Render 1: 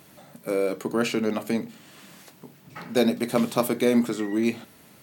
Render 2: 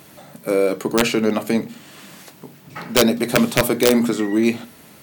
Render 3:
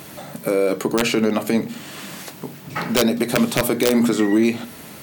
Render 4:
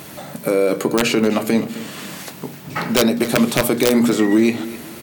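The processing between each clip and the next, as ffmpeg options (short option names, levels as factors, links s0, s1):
-af "bandreject=f=60:t=h:w=6,bandreject=f=120:t=h:w=6,bandreject=f=180:t=h:w=6,bandreject=f=240:t=h:w=6,aeval=exprs='(mod(3.98*val(0)+1,2)-1)/3.98':c=same,volume=2.24"
-af "alimiter=limit=0.168:level=0:latency=1:release=241,volume=2.24"
-af "aecho=1:1:259|518|777:0.158|0.0523|0.0173,volume=1.26"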